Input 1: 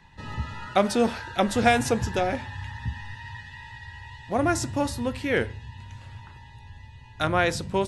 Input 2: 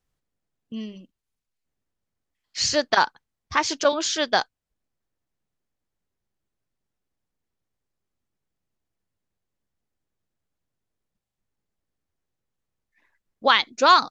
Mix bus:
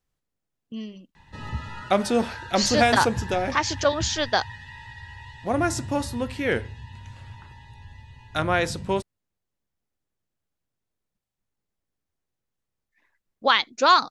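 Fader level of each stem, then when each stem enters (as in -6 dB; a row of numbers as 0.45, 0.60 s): 0.0, -1.5 dB; 1.15, 0.00 s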